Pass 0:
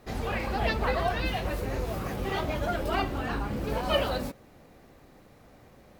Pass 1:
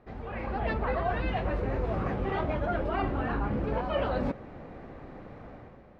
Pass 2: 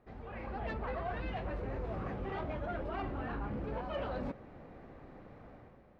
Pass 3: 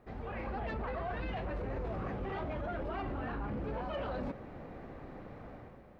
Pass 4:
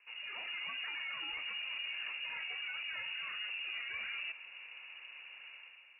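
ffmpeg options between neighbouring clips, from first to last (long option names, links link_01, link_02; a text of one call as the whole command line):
ffmpeg -i in.wav -af "areverse,acompressor=threshold=-37dB:ratio=5,areverse,lowpass=1900,dynaudnorm=framelen=100:gausssize=9:maxgain=10dB" out.wav
ffmpeg -i in.wav -af "asoftclip=type=tanh:threshold=-21.5dB,volume=-7.5dB" out.wav
ffmpeg -i in.wav -af "alimiter=level_in=12.5dB:limit=-24dB:level=0:latency=1:release=21,volume=-12.5dB,volume=5dB" out.wav
ffmpeg -i in.wav -af "lowpass=frequency=2500:width_type=q:width=0.5098,lowpass=frequency=2500:width_type=q:width=0.6013,lowpass=frequency=2500:width_type=q:width=0.9,lowpass=frequency=2500:width_type=q:width=2.563,afreqshift=-2900,volume=-4dB" out.wav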